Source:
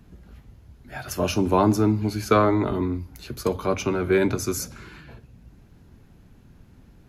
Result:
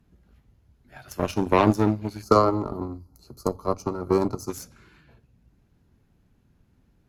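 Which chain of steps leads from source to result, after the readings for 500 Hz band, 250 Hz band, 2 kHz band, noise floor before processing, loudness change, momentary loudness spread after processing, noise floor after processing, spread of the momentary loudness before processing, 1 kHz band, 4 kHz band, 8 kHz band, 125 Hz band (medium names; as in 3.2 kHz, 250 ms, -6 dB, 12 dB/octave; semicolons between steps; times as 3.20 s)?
-1.0 dB, -2.5 dB, -5.5 dB, -53 dBFS, -1.0 dB, 16 LU, -65 dBFS, 14 LU, +0.5 dB, -4.5 dB, -8.5 dB, -3.0 dB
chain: Chebyshev shaper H 7 -19 dB, 8 -32 dB, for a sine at -3.5 dBFS; time-frequency box 2.22–4.50 s, 1.4–4 kHz -17 dB; trim +2 dB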